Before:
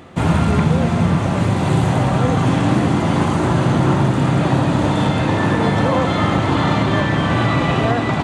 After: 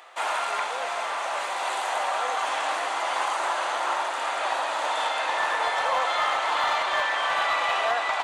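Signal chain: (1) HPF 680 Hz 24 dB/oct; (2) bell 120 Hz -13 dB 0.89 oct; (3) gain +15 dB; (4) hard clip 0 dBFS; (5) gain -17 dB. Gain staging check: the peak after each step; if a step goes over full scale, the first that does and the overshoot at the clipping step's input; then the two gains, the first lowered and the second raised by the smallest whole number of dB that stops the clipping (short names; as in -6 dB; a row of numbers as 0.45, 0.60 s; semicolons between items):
-9.0, -9.5, +5.5, 0.0, -17.0 dBFS; step 3, 5.5 dB; step 3 +9 dB, step 5 -11 dB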